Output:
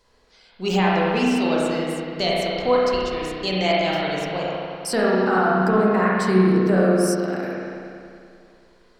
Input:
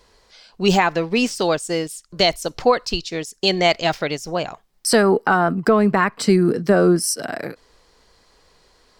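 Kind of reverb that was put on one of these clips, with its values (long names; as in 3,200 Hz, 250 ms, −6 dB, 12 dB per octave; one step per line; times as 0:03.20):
spring reverb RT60 2.4 s, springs 32/48 ms, chirp 40 ms, DRR −5.5 dB
level −8.5 dB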